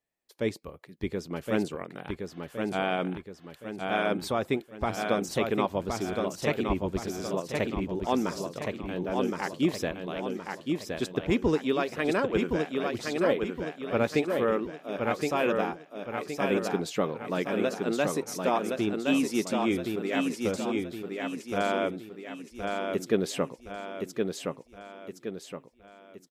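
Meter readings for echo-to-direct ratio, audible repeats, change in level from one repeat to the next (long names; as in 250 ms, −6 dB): −3.0 dB, 5, −7.0 dB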